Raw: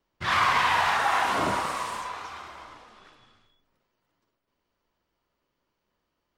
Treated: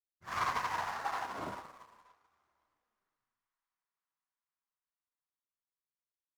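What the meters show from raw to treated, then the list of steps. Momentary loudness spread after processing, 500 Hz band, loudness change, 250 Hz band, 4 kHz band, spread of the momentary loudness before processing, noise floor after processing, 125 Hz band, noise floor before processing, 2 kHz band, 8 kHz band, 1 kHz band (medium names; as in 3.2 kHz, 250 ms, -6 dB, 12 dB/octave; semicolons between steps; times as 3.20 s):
12 LU, -13.5 dB, -12.5 dB, -13.5 dB, -17.5 dB, 18 LU, under -85 dBFS, -13.0 dB, -80 dBFS, -15.5 dB, -13.5 dB, -12.5 dB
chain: median filter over 15 samples; feedback echo behind a high-pass 513 ms, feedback 68%, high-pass 1.4 kHz, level -21 dB; upward expansion 2.5:1, over -40 dBFS; trim -7 dB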